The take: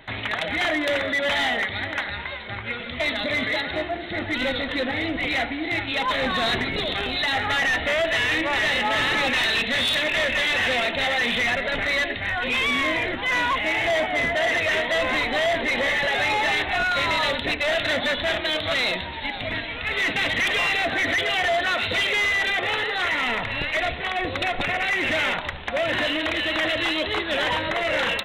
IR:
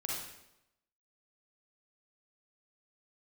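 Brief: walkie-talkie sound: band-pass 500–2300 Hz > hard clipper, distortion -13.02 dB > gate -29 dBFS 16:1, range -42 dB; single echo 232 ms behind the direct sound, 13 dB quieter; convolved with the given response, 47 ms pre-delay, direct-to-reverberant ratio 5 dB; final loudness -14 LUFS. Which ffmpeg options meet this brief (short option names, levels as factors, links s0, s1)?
-filter_complex "[0:a]aecho=1:1:232:0.224,asplit=2[s0][s1];[1:a]atrim=start_sample=2205,adelay=47[s2];[s1][s2]afir=irnorm=-1:irlink=0,volume=0.422[s3];[s0][s3]amix=inputs=2:normalize=0,highpass=500,lowpass=2300,asoftclip=type=hard:threshold=0.0794,agate=range=0.00794:threshold=0.0355:ratio=16,volume=3.55"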